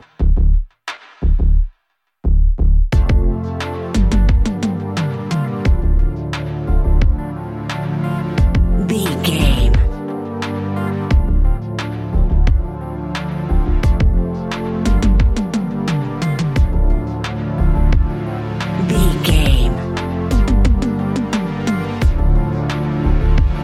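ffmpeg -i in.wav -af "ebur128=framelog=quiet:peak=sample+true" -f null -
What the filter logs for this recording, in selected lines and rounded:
Integrated loudness:
  I:         -18.0 LUFS
  Threshold: -28.1 LUFS
Loudness range:
  LRA:         2.1 LU
  Threshold: -38.1 LUFS
  LRA low:   -19.1 LUFS
  LRA high:  -17.0 LUFS
Sample peak:
  Peak:       -1.8 dBFS
True peak:
  Peak:       -1.7 dBFS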